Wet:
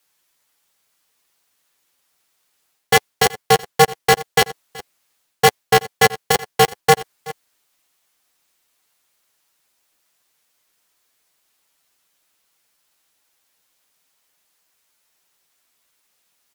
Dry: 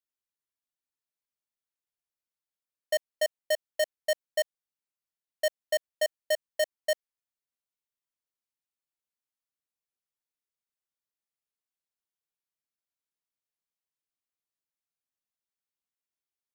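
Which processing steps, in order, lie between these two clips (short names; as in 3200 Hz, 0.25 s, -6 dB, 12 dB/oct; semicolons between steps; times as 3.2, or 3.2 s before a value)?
HPF 410 Hz 12 dB/oct; reverse; compressor 6:1, threshold -33 dBFS, peak gain reduction 11 dB; reverse; flange 1.3 Hz, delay 8.2 ms, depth 1.6 ms, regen +7%; wow and flutter 21 cents; on a send: echo 0.376 s -23 dB; on the sum: maximiser +31 dB; polarity switched at an audio rate 160 Hz; gain -1 dB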